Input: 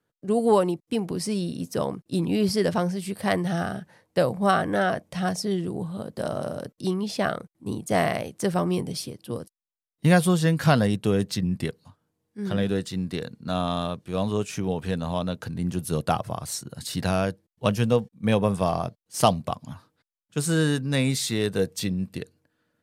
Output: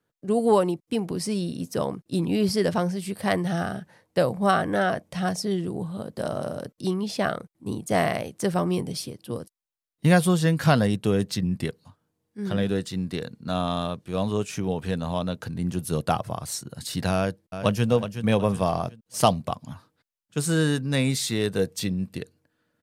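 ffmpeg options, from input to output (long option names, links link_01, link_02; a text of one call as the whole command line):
ffmpeg -i in.wav -filter_complex "[0:a]asplit=2[link_01][link_02];[link_02]afade=type=in:start_time=17.15:duration=0.01,afade=type=out:start_time=17.89:duration=0.01,aecho=0:1:370|740|1110|1480:0.334965|0.133986|0.0535945|0.0214378[link_03];[link_01][link_03]amix=inputs=2:normalize=0" out.wav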